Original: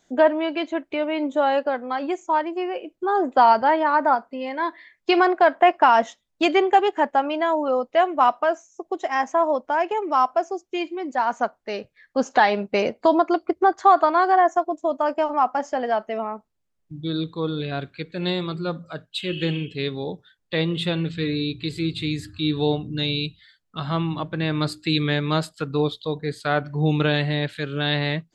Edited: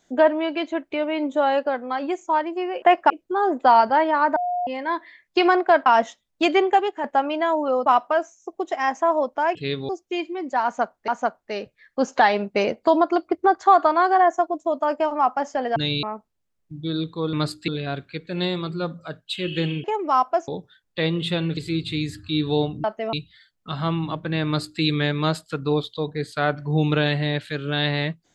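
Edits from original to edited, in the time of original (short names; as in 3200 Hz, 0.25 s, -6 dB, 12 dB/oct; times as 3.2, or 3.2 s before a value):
4.08–4.39 bleep 715 Hz -21.5 dBFS
5.58–5.86 move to 2.82
6.66–7.04 fade out, to -8.5 dB
7.86–8.18 cut
9.87–10.51 swap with 19.69–20.03
11.26–11.7 loop, 2 plays
15.94–16.23 swap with 22.94–23.21
21.12–21.67 cut
24.54–24.89 copy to 17.53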